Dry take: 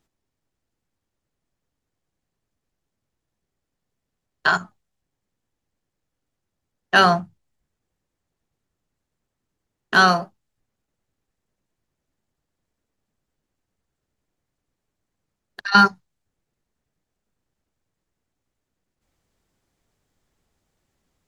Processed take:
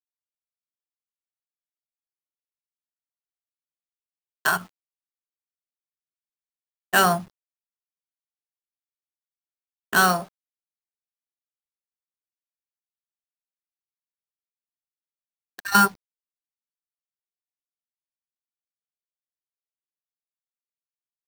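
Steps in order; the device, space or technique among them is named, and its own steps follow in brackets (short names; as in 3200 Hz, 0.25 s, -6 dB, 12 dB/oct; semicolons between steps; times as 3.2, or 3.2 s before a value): early 8-bit sampler (sample-rate reducer 10000 Hz, jitter 0%; bit-crush 8-bit); gain -3.5 dB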